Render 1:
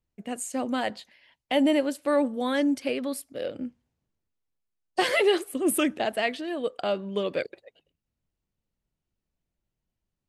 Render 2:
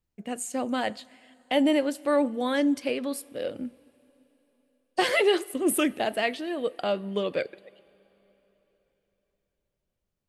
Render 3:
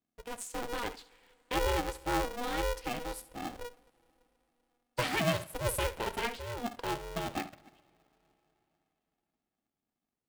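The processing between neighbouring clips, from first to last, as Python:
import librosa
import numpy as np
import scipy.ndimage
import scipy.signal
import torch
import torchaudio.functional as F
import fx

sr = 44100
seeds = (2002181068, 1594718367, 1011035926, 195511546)

y1 = fx.rev_double_slope(x, sr, seeds[0], early_s=0.27, late_s=4.0, knee_db=-18, drr_db=17.5)
y2 = fx.room_flutter(y1, sr, wall_m=11.7, rt60_s=0.28)
y2 = y2 * np.sign(np.sin(2.0 * np.pi * 240.0 * np.arange(len(y2)) / sr))
y2 = y2 * librosa.db_to_amplitude(-8.0)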